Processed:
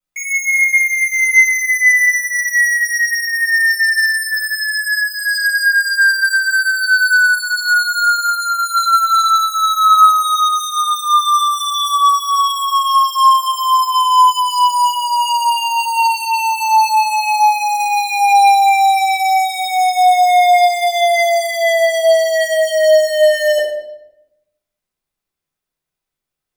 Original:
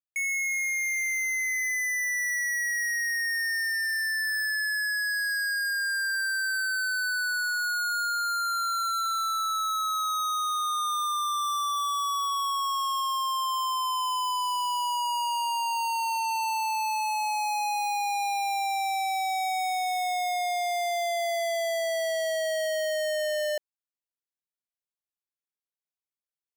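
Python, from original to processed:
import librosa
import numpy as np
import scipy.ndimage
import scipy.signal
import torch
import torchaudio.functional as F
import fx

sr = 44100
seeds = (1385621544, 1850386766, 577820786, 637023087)

y = fx.low_shelf(x, sr, hz=450.0, db=5.5)
y = fx.room_shoebox(y, sr, seeds[0], volume_m3=260.0, walls='mixed', distance_m=6.8)
y = y * 10.0 ** (-2.5 / 20.0)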